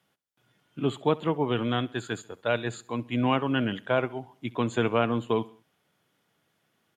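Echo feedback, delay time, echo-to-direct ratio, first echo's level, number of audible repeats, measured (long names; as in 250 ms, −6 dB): 47%, 67 ms, −20.5 dB, −21.5 dB, 3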